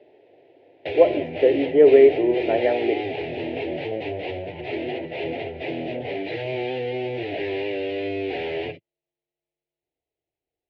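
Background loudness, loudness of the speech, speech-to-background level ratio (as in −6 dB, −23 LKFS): −29.0 LKFS, −18.5 LKFS, 10.5 dB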